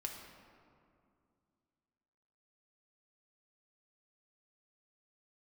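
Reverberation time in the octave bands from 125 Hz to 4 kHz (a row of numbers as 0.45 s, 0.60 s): 2.9 s, 3.0 s, 2.4 s, 2.3 s, 1.7 s, 1.2 s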